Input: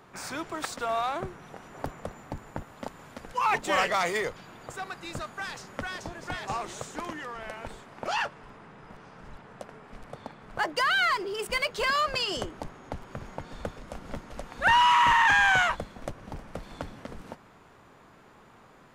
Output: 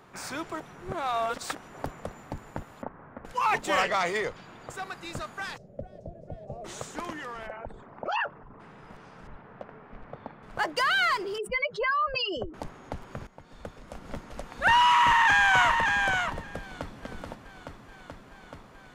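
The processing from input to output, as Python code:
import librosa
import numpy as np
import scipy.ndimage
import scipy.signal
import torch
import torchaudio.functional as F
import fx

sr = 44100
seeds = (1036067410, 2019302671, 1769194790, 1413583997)

y = fx.lowpass(x, sr, hz=1700.0, slope=24, at=(2.82, 3.25))
y = fx.peak_eq(y, sr, hz=13000.0, db=-11.0, octaves=0.93, at=(3.82, 4.7))
y = fx.curve_eq(y, sr, hz=(170.0, 320.0, 620.0, 970.0), db=(0, -10, 3, -30), at=(5.56, 6.64), fade=0.02)
y = fx.envelope_sharpen(y, sr, power=2.0, at=(7.46, 8.59), fade=0.02)
y = fx.lowpass(y, sr, hz=2200.0, slope=12, at=(9.27, 10.43))
y = fx.spec_expand(y, sr, power=2.2, at=(11.38, 12.54))
y = fx.echo_throw(y, sr, start_s=14.95, length_s=1.03, ms=580, feedback_pct=10, wet_db=-4.5)
y = fx.echo_throw(y, sr, start_s=16.59, length_s=0.44, ms=430, feedback_pct=85, wet_db=-4.5)
y = fx.edit(y, sr, fx.reverse_span(start_s=0.6, length_s=0.95),
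    fx.fade_in_from(start_s=13.27, length_s=0.93, floor_db=-15.5), tone=tone)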